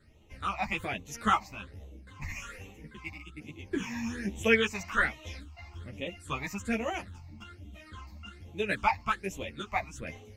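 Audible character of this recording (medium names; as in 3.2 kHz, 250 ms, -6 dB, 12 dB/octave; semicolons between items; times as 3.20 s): phasing stages 8, 1.2 Hz, lowest notch 420–1500 Hz; random-step tremolo; a shimmering, thickened sound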